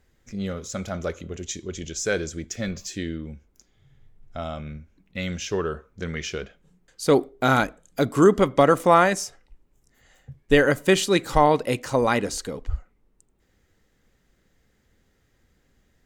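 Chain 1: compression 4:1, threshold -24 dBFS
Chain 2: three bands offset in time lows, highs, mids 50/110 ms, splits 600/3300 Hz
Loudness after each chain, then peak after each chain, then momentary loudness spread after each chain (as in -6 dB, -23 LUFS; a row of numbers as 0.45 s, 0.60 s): -30.5 LUFS, -25.0 LUFS; -11.5 dBFS, -5.0 dBFS; 11 LU, 16 LU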